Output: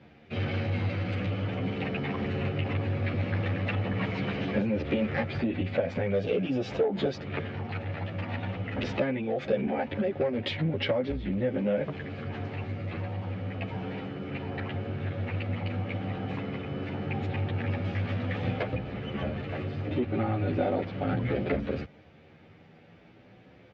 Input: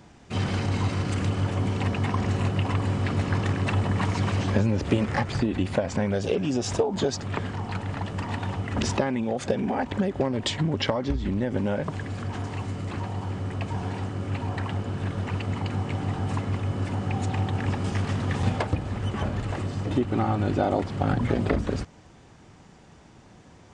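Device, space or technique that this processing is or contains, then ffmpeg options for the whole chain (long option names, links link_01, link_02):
barber-pole flanger into a guitar amplifier: -filter_complex "[0:a]asplit=2[link_01][link_02];[link_02]adelay=10.9,afreqshift=0.41[link_03];[link_01][link_03]amix=inputs=2:normalize=1,asoftclip=type=tanh:threshold=-19dB,highpass=82,equalizer=frequency=520:width_type=q:width=4:gain=6,equalizer=frequency=1000:width_type=q:width=4:gain=-9,equalizer=frequency=2300:width_type=q:width=4:gain=6,lowpass=frequency=3800:width=0.5412,lowpass=frequency=3800:width=1.3066"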